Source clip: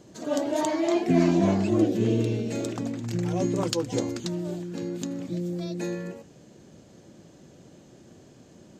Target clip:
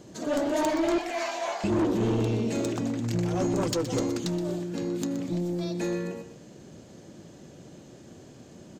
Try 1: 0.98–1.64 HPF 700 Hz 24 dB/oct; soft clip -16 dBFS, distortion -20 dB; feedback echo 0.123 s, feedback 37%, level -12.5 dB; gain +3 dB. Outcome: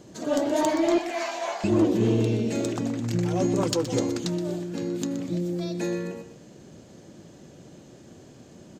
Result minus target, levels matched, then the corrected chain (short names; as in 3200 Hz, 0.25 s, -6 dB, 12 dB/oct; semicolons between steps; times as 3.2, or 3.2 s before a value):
soft clip: distortion -9 dB
0.98–1.64 HPF 700 Hz 24 dB/oct; soft clip -24 dBFS, distortion -11 dB; feedback echo 0.123 s, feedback 37%, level -12.5 dB; gain +3 dB